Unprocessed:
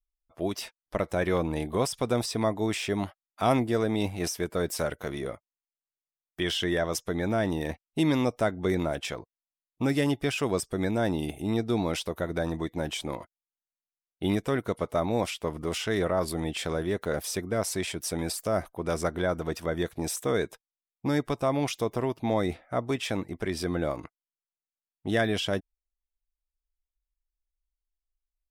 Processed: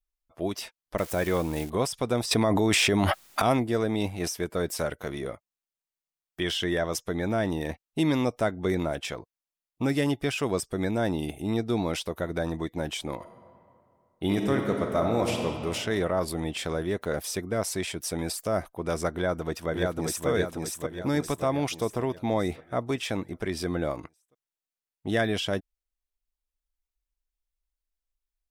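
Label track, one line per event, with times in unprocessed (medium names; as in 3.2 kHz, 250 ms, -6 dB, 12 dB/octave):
0.980000	1.700000	zero-crossing glitches of -30.5 dBFS
2.310000	3.420000	level flattener amount 100%
13.170000	15.440000	reverb throw, RT60 2.5 s, DRR 2 dB
19.130000	20.280000	echo throw 580 ms, feedback 50%, level -2.5 dB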